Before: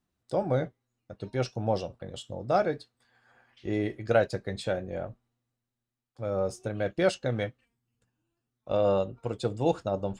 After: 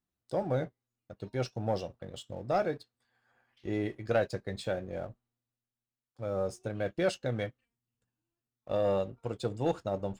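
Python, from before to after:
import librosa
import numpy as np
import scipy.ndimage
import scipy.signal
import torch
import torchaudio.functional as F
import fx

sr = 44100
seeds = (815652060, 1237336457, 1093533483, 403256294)

y = fx.leveller(x, sr, passes=1)
y = y * librosa.db_to_amplitude(-7.0)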